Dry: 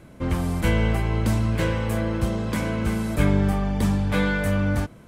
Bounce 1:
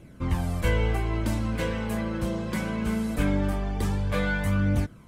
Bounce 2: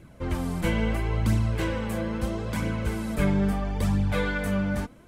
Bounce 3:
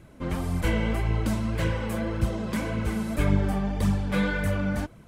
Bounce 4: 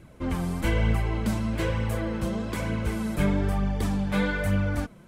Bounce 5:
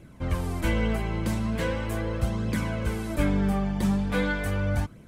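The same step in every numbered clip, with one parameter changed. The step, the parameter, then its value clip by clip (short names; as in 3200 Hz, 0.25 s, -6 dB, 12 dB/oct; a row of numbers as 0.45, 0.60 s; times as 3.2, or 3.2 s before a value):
flange, rate: 0.21, 0.75, 1.8, 1.1, 0.4 Hz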